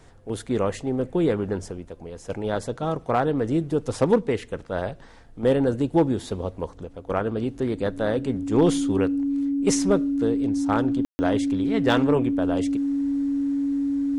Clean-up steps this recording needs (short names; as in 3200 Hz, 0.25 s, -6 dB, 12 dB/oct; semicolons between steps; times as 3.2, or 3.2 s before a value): clip repair -11 dBFS; notch 280 Hz, Q 30; room tone fill 11.05–11.19